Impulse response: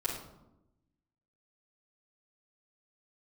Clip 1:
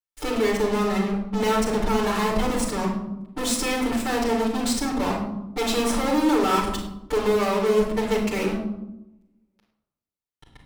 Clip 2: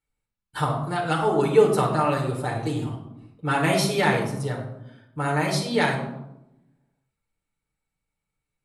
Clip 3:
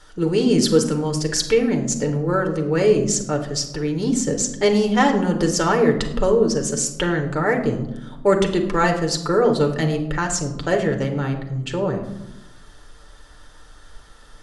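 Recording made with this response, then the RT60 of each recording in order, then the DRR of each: 1; 0.90, 0.90, 0.95 s; -6.5, -2.0, 3.0 dB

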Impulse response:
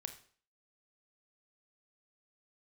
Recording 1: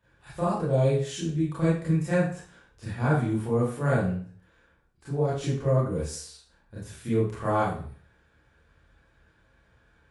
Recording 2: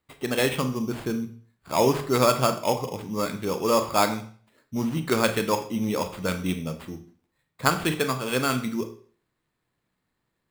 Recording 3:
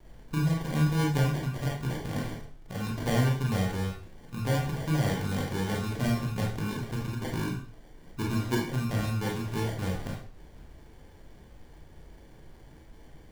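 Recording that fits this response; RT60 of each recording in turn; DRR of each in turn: 2; 0.50, 0.50, 0.50 s; -10.0, 7.5, -2.0 dB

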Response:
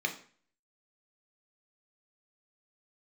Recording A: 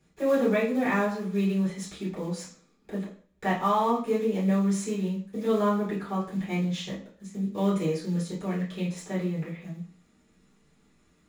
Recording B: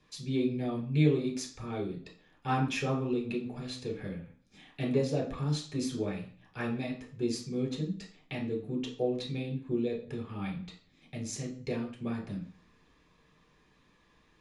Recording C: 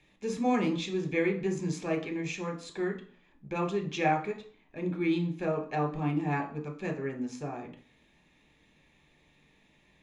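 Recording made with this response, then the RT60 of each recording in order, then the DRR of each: C; 0.45, 0.45, 0.45 s; -8.5, -1.0, 3.5 dB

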